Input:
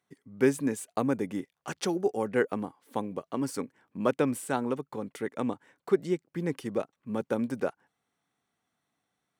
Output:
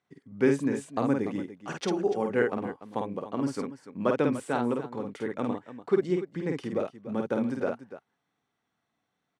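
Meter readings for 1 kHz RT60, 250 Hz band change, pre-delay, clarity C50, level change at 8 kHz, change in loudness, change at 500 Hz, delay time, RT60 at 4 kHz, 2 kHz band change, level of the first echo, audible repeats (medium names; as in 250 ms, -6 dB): no reverb, +1.5 dB, no reverb, no reverb, -6.0 dB, +1.5 dB, +1.5 dB, 50 ms, no reverb, +1.0 dB, -3.5 dB, 2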